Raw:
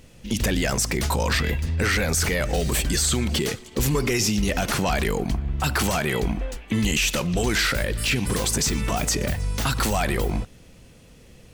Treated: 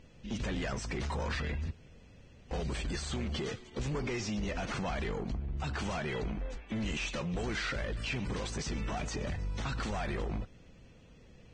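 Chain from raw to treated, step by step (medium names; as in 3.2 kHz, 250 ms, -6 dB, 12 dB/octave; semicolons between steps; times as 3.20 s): 5.19–5.84 s: peaking EQ 1.6 kHz -3.5 dB 1.9 oct; saturation -23.5 dBFS, distortion -11 dB; 1.71–2.51 s: room tone; distance through air 140 m; trim -7 dB; Vorbis 16 kbps 22.05 kHz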